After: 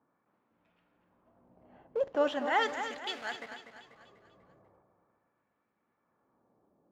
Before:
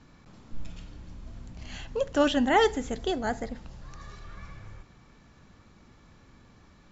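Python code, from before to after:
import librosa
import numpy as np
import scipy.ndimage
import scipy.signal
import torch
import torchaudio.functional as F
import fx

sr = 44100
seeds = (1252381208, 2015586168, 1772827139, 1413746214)

p1 = fx.highpass(x, sr, hz=150.0, slope=6)
p2 = fx.env_lowpass(p1, sr, base_hz=600.0, full_db=-23.5)
p3 = fx.high_shelf(p2, sr, hz=3100.0, db=9.0)
p4 = fx.schmitt(p3, sr, flips_db=-35.0)
p5 = p3 + F.gain(torch.from_numpy(p4), -3.0).numpy()
p6 = fx.filter_lfo_bandpass(p5, sr, shape='sine', hz=0.4, low_hz=520.0, high_hz=2400.0, q=1.1)
p7 = fx.echo_feedback(p6, sr, ms=245, feedback_pct=46, wet_db=-9.5)
y = F.gain(torch.from_numpy(p7), -4.0).numpy()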